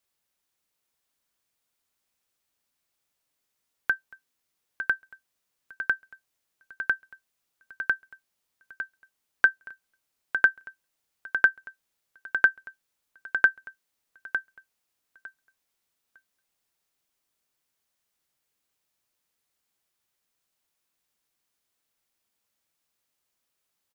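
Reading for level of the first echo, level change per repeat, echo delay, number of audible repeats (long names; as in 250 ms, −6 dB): −9.0 dB, −15.5 dB, 905 ms, 2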